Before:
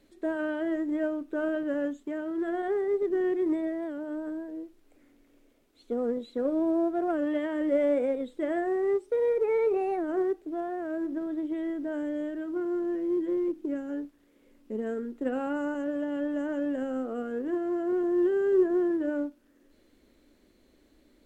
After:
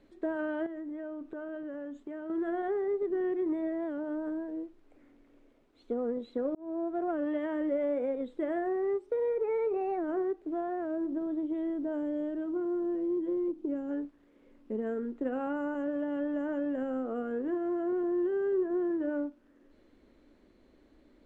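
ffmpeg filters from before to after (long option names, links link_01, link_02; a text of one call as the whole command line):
ffmpeg -i in.wav -filter_complex "[0:a]asettb=1/sr,asplit=3[link_01][link_02][link_03];[link_01]atrim=end=0.664[link_04];[link_02]atrim=start=0.66:end=2.3,asetpts=PTS-STARTPTS,afade=type=in:duration=0.004:curve=qsin,afade=type=out:start_time=1.636:duration=0.004:curve=qsin,acompressor=threshold=-37dB:ratio=16:attack=3.2:release=140:knee=1:detection=peak[link_05];[link_03]atrim=start=2.296[link_06];[link_04][link_05]acrossfade=duration=0.004:curve1=hsin:curve2=qsin[link_07];[link_07][link_06]acrossfade=duration=0.004:curve1=qsin:curve2=hsin,asettb=1/sr,asplit=3[link_08][link_09][link_10];[link_08]atrim=end=10.854[link_11];[link_09]atrim=start=10.85:end=13.91,asetpts=PTS-STARTPTS,afade=type=in:duration=0.004:curve=qsin,afade=type=out:start_time=3.056:duration=0.004:curve=qsin,equalizer=frequency=1800:width_type=o:width=0.97:gain=-7[link_12];[link_10]atrim=start=13.906[link_13];[link_11][link_12]acrossfade=duration=0.004:curve1=hsin:curve2=qsin[link_14];[link_14][link_13]acrossfade=duration=0.004:curve1=qsin:curve2=hsin,asplit=2[link_15][link_16];[link_15]atrim=end=6.55,asetpts=PTS-STARTPTS,afade=type=out:start_time=6.546:duration=0.004:curve=hsin[link_17];[link_16]atrim=start=6.55,asetpts=PTS-STARTPTS,afade=type=in:duration=0.58[link_18];[link_17][link_18]concat=n=2:v=0:a=1,equalizer=frequency=1000:width=1.5:gain=2.5,acompressor=threshold=-31dB:ratio=2.5,aemphasis=mode=reproduction:type=75fm" out.wav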